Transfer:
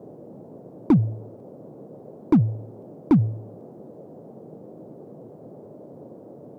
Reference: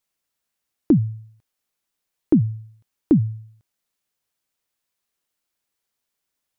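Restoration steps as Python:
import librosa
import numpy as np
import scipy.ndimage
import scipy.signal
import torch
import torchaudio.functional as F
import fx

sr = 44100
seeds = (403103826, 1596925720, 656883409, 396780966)

y = fx.fix_declip(x, sr, threshold_db=-11.0)
y = fx.noise_reduce(y, sr, print_start_s=5.29, print_end_s=5.79, reduce_db=30.0)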